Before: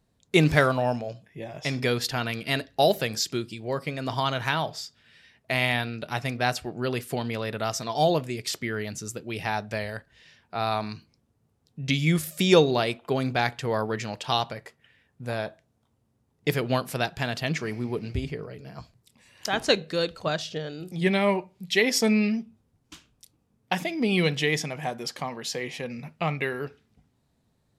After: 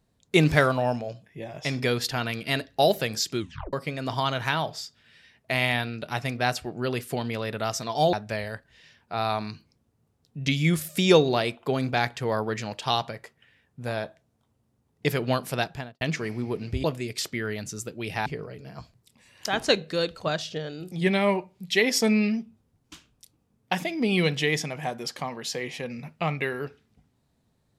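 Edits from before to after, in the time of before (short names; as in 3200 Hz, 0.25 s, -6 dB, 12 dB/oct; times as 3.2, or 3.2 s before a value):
3.39 tape stop 0.34 s
8.13–9.55 move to 18.26
17.05–17.43 studio fade out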